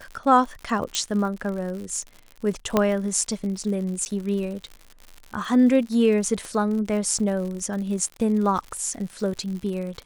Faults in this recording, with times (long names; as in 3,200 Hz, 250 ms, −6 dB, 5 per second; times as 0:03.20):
surface crackle 92 per second −32 dBFS
0:00.95: click −9 dBFS
0:02.77: click −6 dBFS
0:04.05–0:04.06: drop-out 9.4 ms
0:06.45: click